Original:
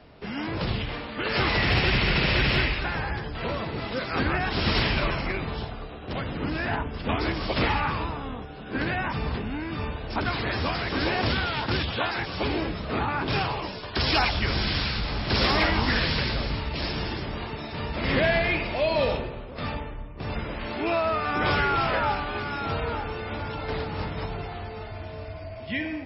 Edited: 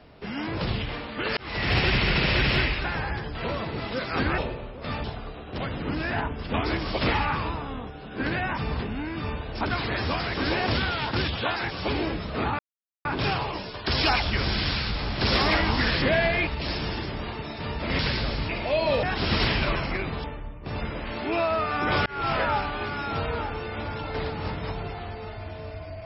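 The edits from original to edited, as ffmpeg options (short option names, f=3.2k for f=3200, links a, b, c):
-filter_complex "[0:a]asplit=12[a][b][c][d][e][f][g][h][i][j][k][l];[a]atrim=end=1.37,asetpts=PTS-STARTPTS,afade=t=out:st=1.366:d=0.004:c=hsin[m];[b]atrim=start=1.37:end=4.382,asetpts=PTS-STARTPTS,afade=t=in:d=0.39[n];[c]atrim=start=19.118:end=19.782[o];[d]atrim=start=5.588:end=13.14,asetpts=PTS-STARTPTS,afade=t=out:st=7.548:d=0.004:c=hsin,apad=pad_dur=0.46[p];[e]atrim=start=13.14:end=16.112,asetpts=PTS-STARTPTS,afade=t=in:d=0.004:c=hsin[q];[f]atrim=start=18.128:end=18.582[r];[g]atrim=start=16.608:end=18.132[s];[h]atrim=start=16.108:end=16.612[t];[i]atrim=start=18.578:end=19.122[u];[j]atrim=start=4.378:end=5.592[v];[k]atrim=start=19.778:end=21.6,asetpts=PTS-STARTPTS,afade=t=out:st=1.818:d=0.004:c=hsin[w];[l]atrim=start=21.6,asetpts=PTS-STARTPTS,afade=t=in:d=0.26[x];[m][n]concat=n=2:v=0:a=1[y];[y][o]acrossfade=d=0.004:c1=hsin:c2=hsin[z];[p][q]concat=n=2:v=0:a=1[aa];[z][aa]acrossfade=d=0.004:c1=hsin:c2=hsin[ab];[ab][r]acrossfade=d=0.004:c1=hsin:c2=hsin[ac];[ac][s]acrossfade=d=0.004:c1=hsin:c2=hsin[ad];[ad][t]acrossfade=d=0.004:c1=hsin:c2=hsin[ae];[ae][u]acrossfade=d=0.004:c1=hsin:c2=hsin[af];[af][v]acrossfade=d=0.004:c1=hsin:c2=hsin[ag];[w][x]concat=n=2:v=0:a=1[ah];[ag][ah]acrossfade=d=0.004:c1=hsin:c2=hsin"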